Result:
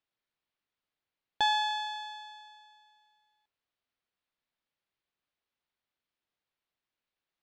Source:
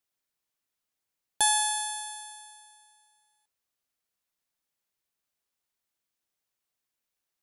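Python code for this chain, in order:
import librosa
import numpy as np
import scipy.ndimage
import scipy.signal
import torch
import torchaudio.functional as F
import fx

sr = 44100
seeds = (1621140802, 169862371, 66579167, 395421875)

y = scipy.signal.sosfilt(scipy.signal.butter(4, 4200.0, 'lowpass', fs=sr, output='sos'), x)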